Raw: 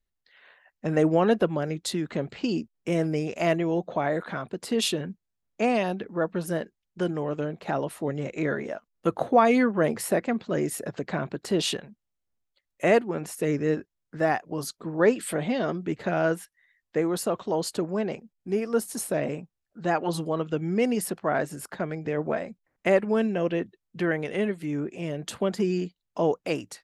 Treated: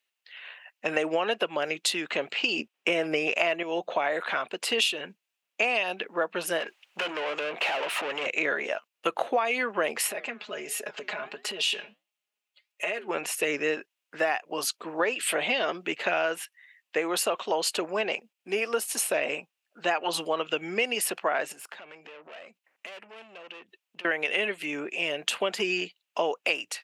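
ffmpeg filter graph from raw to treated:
ffmpeg -i in.wav -filter_complex "[0:a]asettb=1/sr,asplit=3[link_01][link_02][link_03];[link_01]atrim=end=2.594[link_04];[link_02]atrim=start=2.59:end=3.63,asetpts=PTS-STARTPTS,afade=type=in:duration=0.004:curve=qsin,afade=type=out:start_time=1.036:duration=0.004:curve=qsin,highshelf=frequency=3900:gain=-9,bandreject=frequency=4400:width=29,acontrast=89[link_05];[link_03]atrim=start=3.626[link_06];[link_04][link_05]acrossfade=duration=0.004:curve1=hsin:curve2=qsin[link_07];[link_07][link_06]acrossfade=duration=0.004:curve1=qsin:curve2=hsin,asettb=1/sr,asplit=3[link_08][link_09][link_10];[link_08]atrim=end=6.604[link_11];[link_09]atrim=start=6.6:end=8.26,asetpts=PTS-STARTPTS,afade=type=in:duration=0.004:curve=qsin,afade=type=out:start_time=1.656:duration=0.004:curve=qsin,acompressor=threshold=-39dB:ratio=3:attack=3.2:release=140:knee=1:detection=peak,bandreject=frequency=360:width=11,asplit=2[link_12][link_13];[link_13]highpass=frequency=720:poles=1,volume=29dB,asoftclip=type=tanh:threshold=-26.5dB[link_14];[link_12][link_14]amix=inputs=2:normalize=0,lowpass=frequency=2200:poles=1,volume=-6dB[link_15];[link_10]atrim=start=8.256[link_16];[link_11][link_15]acrossfade=duration=0.004:curve1=hsin:curve2=qsin[link_17];[link_17][link_16]acrossfade=duration=0.004:curve1=qsin:curve2=hsin,asettb=1/sr,asplit=3[link_18][link_19][link_20];[link_18]atrim=end=10.074[link_21];[link_19]atrim=start=10.07:end=13.08,asetpts=PTS-STARTPTS,afade=type=in:duration=0.004:curve=qsin,afade=type=out:start_time=3.006:duration=0.004:curve=qsin,aecho=1:1:4.8:0.75,atrim=end_sample=132741,flanger=delay=4.7:depth=6:regen=-80:speed=1.4:shape=triangular,acompressor=threshold=-33dB:ratio=5:attack=3.2:release=140:knee=1:detection=peak[link_22];[link_20]atrim=start=13.076[link_23];[link_21][link_22]acrossfade=duration=0.004:curve1=hsin:curve2=qsin[link_24];[link_24][link_23]acrossfade=duration=0.004:curve1=qsin:curve2=hsin,asettb=1/sr,asplit=3[link_25][link_26][link_27];[link_25]atrim=end=21.524[link_28];[link_26]atrim=start=21.52:end=24.05,asetpts=PTS-STARTPTS,afade=type=in:duration=0.004:curve=qsin,afade=type=out:start_time=2.526:duration=0.004:curve=qsin,aeval=exprs='(tanh(31.6*val(0)+0.35)-tanh(0.35))/31.6':channel_layout=same,acompressor=threshold=-45dB:ratio=16:attack=3.2:release=140:knee=1:detection=peak[link_29];[link_27]atrim=start=24.046[link_30];[link_28][link_29]acrossfade=duration=0.004:curve1=hsin:curve2=qsin[link_31];[link_31][link_30]acrossfade=duration=0.004:curve1=qsin:curve2=hsin,highpass=590,equalizer=frequency=2700:width_type=o:width=0.58:gain=12.5,acompressor=threshold=-28dB:ratio=12,volume=6dB" out.wav

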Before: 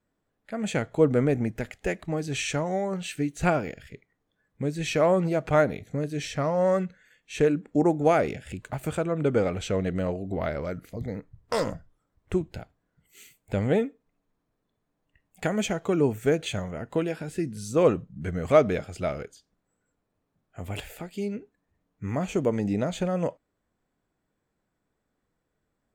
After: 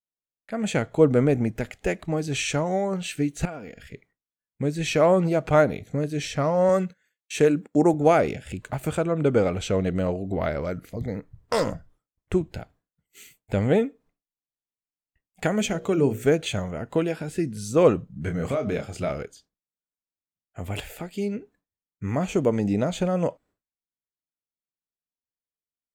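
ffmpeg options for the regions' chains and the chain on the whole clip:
ffmpeg -i in.wav -filter_complex "[0:a]asettb=1/sr,asplit=3[link_01][link_02][link_03];[link_01]atrim=end=3.454[link_04];[link_02]atrim=start=3.45:end=3.87,asetpts=PTS-STARTPTS,afade=type=in:duration=0.004:curve=qsin,afade=type=out:start_time=0.416:duration=0.004:curve=qsin,aecho=1:1:4.2:0.36,atrim=end_sample=18522,acompressor=threshold=-43dB:ratio=2.5:attack=3.2:release=140:knee=1:detection=peak[link_05];[link_03]atrim=start=3.866[link_06];[link_04][link_05]acrossfade=duration=0.004:curve1=hsin:curve2=qsin[link_07];[link_07][link_06]acrossfade=duration=0.004:curve1=qsin:curve2=hsin,asettb=1/sr,asplit=3[link_08][link_09][link_10];[link_08]atrim=end=6.694[link_11];[link_09]atrim=start=6.69:end=7.94,asetpts=PTS-STARTPTS,afade=type=in:duration=0.004:curve=qsin,afade=type=out:start_time=1.246:duration=0.004:curve=qsin,highpass=110,highshelf=frequency=6200:gain=8,agate=range=-13dB:threshold=-49dB:ratio=16:release=100:detection=peak[link_12];[link_10]atrim=start=7.936[link_13];[link_11][link_12]acrossfade=duration=0.004:curve1=hsin:curve2=qsin[link_14];[link_14][link_13]acrossfade=duration=0.004:curve1=qsin:curve2=hsin,asettb=1/sr,asplit=3[link_15][link_16][link_17];[link_15]atrim=end=15.594[link_18];[link_16]atrim=start=15.59:end=16.24,asetpts=PTS-STARTPTS,afade=type=in:duration=0.004:curve=qsin,afade=type=out:start_time=0.646:duration=0.004:curve=qsin,equalizer=frequency=920:width=1.2:gain=-4,bandreject=frequency=60:width_type=h:width=6,bandreject=frequency=120:width_type=h:width=6,bandreject=frequency=180:width_type=h:width=6,bandreject=frequency=240:width_type=h:width=6,bandreject=frequency=300:width_type=h:width=6,bandreject=frequency=360:width_type=h:width=6,bandreject=frequency=420:width_type=h:width=6,bandreject=frequency=480:width_type=h:width=6,bandreject=frequency=540:width_type=h:width=6,bandreject=frequency=600:width_type=h:width=6,acompressor=mode=upward:threshold=-33dB:ratio=2.5:attack=3.2:release=140:knee=2.83:detection=peak[link_19];[link_17]atrim=start=16.236[link_20];[link_18][link_19]acrossfade=duration=0.004:curve1=hsin:curve2=qsin[link_21];[link_21][link_20]acrossfade=duration=0.004:curve1=qsin:curve2=hsin,asettb=1/sr,asplit=3[link_22][link_23][link_24];[link_22]atrim=end=18.244[link_25];[link_23]atrim=start=18.24:end=19.1,asetpts=PTS-STARTPTS,afade=type=in:duration=0.004:curve=qsin,afade=type=out:start_time=0.856:duration=0.004:curve=qsin,acompressor=threshold=-25dB:ratio=16:attack=3.2:release=140:knee=1:detection=peak,asplit=2[link_26][link_27];[link_27]adelay=29,volume=-7dB[link_28];[link_26][link_28]amix=inputs=2:normalize=0,atrim=end_sample=37926[link_29];[link_24]atrim=start=19.096[link_30];[link_25][link_29]acrossfade=duration=0.004:curve1=hsin:curve2=qsin[link_31];[link_31][link_30]acrossfade=duration=0.004:curve1=qsin:curve2=hsin,agate=range=-33dB:threshold=-54dB:ratio=3:detection=peak,adynamicequalizer=threshold=0.00251:dfrequency=1800:dqfactor=3.9:tfrequency=1800:tqfactor=3.9:attack=5:release=100:ratio=0.375:range=2:mode=cutabove:tftype=bell,volume=3dB" out.wav

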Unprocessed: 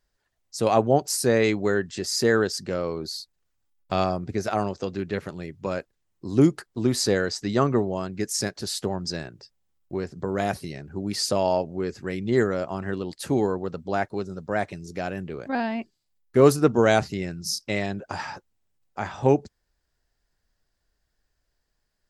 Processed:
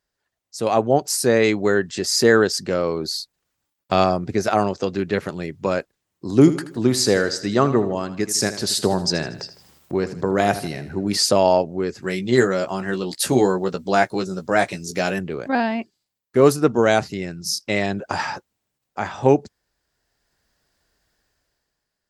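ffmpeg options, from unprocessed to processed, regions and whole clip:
ffmpeg -i in.wav -filter_complex "[0:a]asettb=1/sr,asplit=3[link_01][link_02][link_03];[link_01]atrim=end=6.304[link_04];[link_02]atrim=start=6.3:end=11.17,asetpts=PTS-STARTPTS,afade=type=in:duration=0.004:curve=qsin,afade=type=out:start_time=4.866:duration=0.004:curve=qsin,acompressor=mode=upward:threshold=-32dB:ratio=2.5:attack=3.2:release=140:knee=2.83:detection=peak,aecho=1:1:79|158|237|316:0.211|0.0951|0.0428|0.0193,atrim=end_sample=214767[link_05];[link_03]atrim=start=11.166[link_06];[link_04][link_05]acrossfade=duration=0.004:curve1=hsin:curve2=qsin[link_07];[link_07][link_06]acrossfade=duration=0.004:curve1=qsin:curve2=hsin,asettb=1/sr,asplit=3[link_08][link_09][link_10];[link_08]atrim=end=12.024[link_11];[link_09]atrim=start=12.02:end=15.19,asetpts=PTS-STARTPTS,afade=type=in:duration=0.004:curve=qsin,afade=type=out:start_time=3.166:duration=0.004:curve=qsin,highshelf=frequency=2900:gain=9.5,asplit=2[link_12][link_13];[link_13]adelay=16,volume=-6dB[link_14];[link_12][link_14]amix=inputs=2:normalize=0,atrim=end_sample=139797[link_15];[link_10]atrim=start=15.186[link_16];[link_11][link_15]acrossfade=duration=0.004:curve1=hsin:curve2=qsin[link_17];[link_17][link_16]acrossfade=duration=0.004:curve1=qsin:curve2=hsin,highpass=frequency=130:poles=1,dynaudnorm=framelen=140:gausssize=11:maxgain=11.5dB,volume=-1dB" out.wav

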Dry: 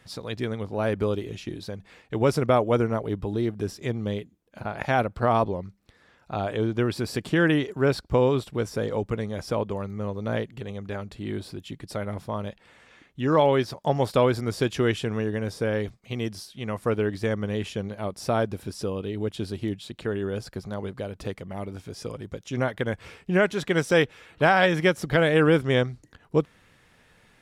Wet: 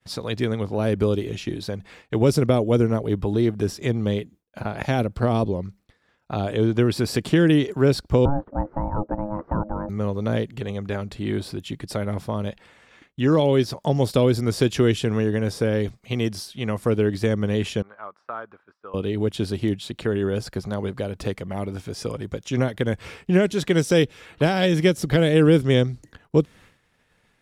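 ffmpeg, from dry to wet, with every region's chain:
ffmpeg -i in.wav -filter_complex "[0:a]asettb=1/sr,asplit=3[link_01][link_02][link_03];[link_01]atrim=end=8.254[link_04];[link_02]atrim=start=8.25:end=9.89,asetpts=PTS-STARTPTS,afade=type=in:duration=0.004:curve=qsin,afade=type=out:start_time=1.636:duration=0.004:curve=qsin,lowpass=frequency=1100:width=0.5412,lowpass=frequency=1100:width=1.3066,equalizer=frequency=810:width=1.5:gain=3.5,aeval=exprs='val(0)*sin(2*PI*420*n/s)':channel_layout=same[link_05];[link_03]atrim=start=9.886[link_06];[link_04][link_05]acrossfade=duration=0.004:curve1=hsin:curve2=qsin[link_07];[link_07][link_06]acrossfade=duration=0.004:curve1=qsin:curve2=hsin,asettb=1/sr,asplit=3[link_08][link_09][link_10];[link_08]atrim=end=17.824[link_11];[link_09]atrim=start=17.82:end=18.94,asetpts=PTS-STARTPTS,afade=type=in:duration=0.004:curve=qsin,afade=type=out:start_time=1.116:duration=0.004:curve=qsin,bandpass=frequency=1300:width_type=q:width=3.6,aemphasis=mode=reproduction:type=75fm[link_12];[link_10]atrim=start=18.936[link_13];[link_11][link_12]acrossfade=duration=0.004:curve1=hsin:curve2=qsin[link_14];[link_14][link_13]acrossfade=duration=0.004:curve1=qsin:curve2=hsin,agate=range=-33dB:threshold=-49dB:ratio=3:detection=peak,acrossover=split=490|3000[link_15][link_16][link_17];[link_16]acompressor=threshold=-36dB:ratio=6[link_18];[link_15][link_18][link_17]amix=inputs=3:normalize=0,volume=6dB" out.wav

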